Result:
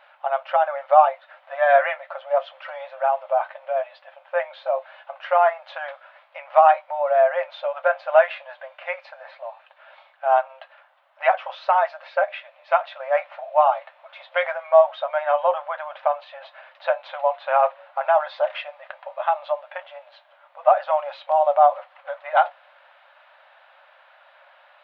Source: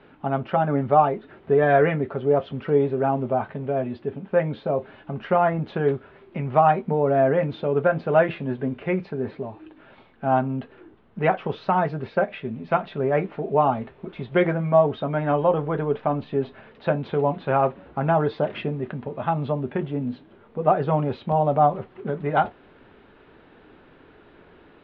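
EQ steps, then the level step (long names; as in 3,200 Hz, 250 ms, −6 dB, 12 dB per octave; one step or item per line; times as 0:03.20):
linear-phase brick-wall high-pass 530 Hz
+3.5 dB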